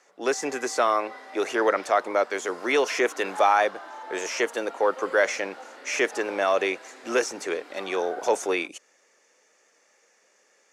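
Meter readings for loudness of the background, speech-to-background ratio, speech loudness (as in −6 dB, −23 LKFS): −42.0 LKFS, 16.0 dB, −26.0 LKFS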